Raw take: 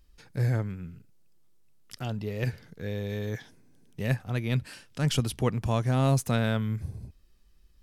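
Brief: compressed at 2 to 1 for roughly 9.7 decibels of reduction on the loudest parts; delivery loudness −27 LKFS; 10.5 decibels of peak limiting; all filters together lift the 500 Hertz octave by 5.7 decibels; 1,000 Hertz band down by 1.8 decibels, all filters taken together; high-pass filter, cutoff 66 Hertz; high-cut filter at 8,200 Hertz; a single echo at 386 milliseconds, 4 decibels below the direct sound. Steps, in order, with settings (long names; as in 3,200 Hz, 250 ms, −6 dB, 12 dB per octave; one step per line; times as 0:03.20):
high-pass filter 66 Hz
low-pass filter 8,200 Hz
parametric band 500 Hz +8.5 dB
parametric band 1,000 Hz −7 dB
downward compressor 2 to 1, threshold −35 dBFS
brickwall limiter −29.5 dBFS
single-tap delay 386 ms −4 dB
level +12.5 dB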